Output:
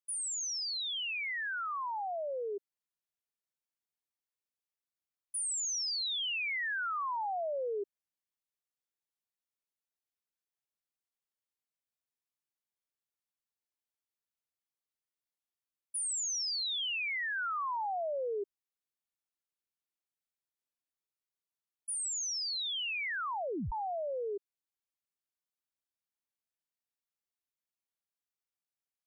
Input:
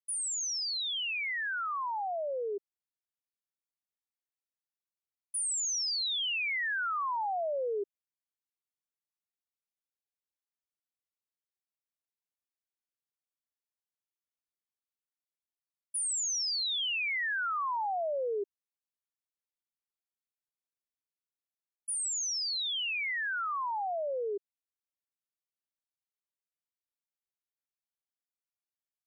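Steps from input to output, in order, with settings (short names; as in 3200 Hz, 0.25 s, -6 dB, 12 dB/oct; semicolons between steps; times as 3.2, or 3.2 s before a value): 16–17.36 resonant low shelf 470 Hz +8 dB, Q 3; 23.05 tape stop 0.67 s; gain -2.5 dB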